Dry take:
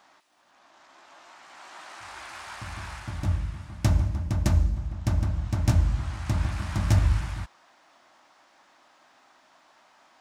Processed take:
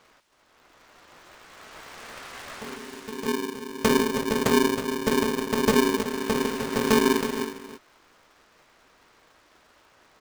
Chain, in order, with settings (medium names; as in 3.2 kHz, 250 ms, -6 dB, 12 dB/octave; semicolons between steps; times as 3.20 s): 2.76–3.81 s: peaking EQ 590 Hz -14 dB 2.9 oct; delay 321 ms -9.5 dB; polarity switched at an audio rate 330 Hz